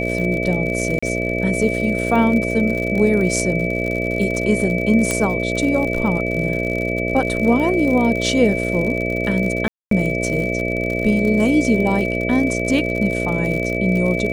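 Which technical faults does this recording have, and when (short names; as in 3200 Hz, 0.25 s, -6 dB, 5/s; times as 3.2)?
buzz 60 Hz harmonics 11 -23 dBFS
crackle 69/s -24 dBFS
tone 2300 Hz -24 dBFS
0.99–1.02 gap 35 ms
5.11 pop -5 dBFS
9.68–9.91 gap 0.233 s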